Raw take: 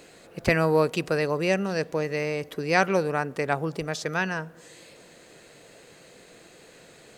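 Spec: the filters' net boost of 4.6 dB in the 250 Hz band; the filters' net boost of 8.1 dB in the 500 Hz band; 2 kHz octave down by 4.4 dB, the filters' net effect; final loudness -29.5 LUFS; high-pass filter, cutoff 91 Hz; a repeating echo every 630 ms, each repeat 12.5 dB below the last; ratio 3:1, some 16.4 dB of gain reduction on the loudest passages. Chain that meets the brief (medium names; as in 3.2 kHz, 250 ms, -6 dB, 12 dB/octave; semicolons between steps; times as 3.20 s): high-pass 91 Hz; peaking EQ 250 Hz +4 dB; peaking EQ 500 Hz +8.5 dB; peaking EQ 2 kHz -6.5 dB; compression 3:1, threshold -33 dBFS; feedback delay 630 ms, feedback 24%, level -12.5 dB; trim +4 dB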